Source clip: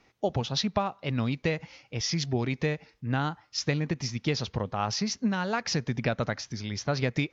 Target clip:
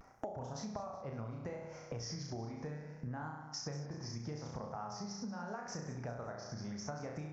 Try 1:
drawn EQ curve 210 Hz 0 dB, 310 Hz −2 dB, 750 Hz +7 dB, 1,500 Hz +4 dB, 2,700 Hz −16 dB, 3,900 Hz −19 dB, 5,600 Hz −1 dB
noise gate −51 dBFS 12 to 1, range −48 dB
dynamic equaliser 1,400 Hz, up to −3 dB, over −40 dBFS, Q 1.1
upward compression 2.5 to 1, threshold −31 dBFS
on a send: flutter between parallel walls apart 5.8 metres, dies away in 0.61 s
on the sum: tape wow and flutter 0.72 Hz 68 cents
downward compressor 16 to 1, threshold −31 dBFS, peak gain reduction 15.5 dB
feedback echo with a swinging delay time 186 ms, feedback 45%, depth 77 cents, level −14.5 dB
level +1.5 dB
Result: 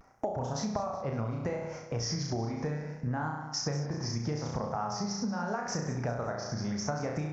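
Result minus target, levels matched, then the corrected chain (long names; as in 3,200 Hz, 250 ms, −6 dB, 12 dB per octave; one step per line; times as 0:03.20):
downward compressor: peak gain reduction −10 dB
drawn EQ curve 210 Hz 0 dB, 310 Hz −2 dB, 750 Hz +7 dB, 1,500 Hz +4 dB, 2,700 Hz −16 dB, 3,900 Hz −19 dB, 5,600 Hz −1 dB
noise gate −51 dBFS 12 to 1, range −48 dB
dynamic equaliser 1,400 Hz, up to −3 dB, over −40 dBFS, Q 1.1
upward compression 2.5 to 1, threshold −31 dBFS
on a send: flutter between parallel walls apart 5.8 metres, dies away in 0.61 s
on the sum: tape wow and flutter 0.72 Hz 68 cents
downward compressor 16 to 1, threshold −41.5 dBFS, peak gain reduction 25 dB
feedback echo with a swinging delay time 186 ms, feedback 45%, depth 77 cents, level −14.5 dB
level +1.5 dB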